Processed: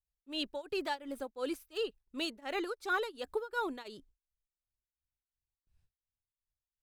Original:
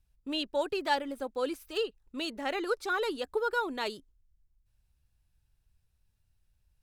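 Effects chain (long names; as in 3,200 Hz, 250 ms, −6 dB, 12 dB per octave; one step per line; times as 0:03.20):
high-shelf EQ 9,600 Hz +3 dB, from 0:03.88 −10.5 dB
noise gate with hold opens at −59 dBFS
shaped tremolo triangle 2.8 Hz, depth 95%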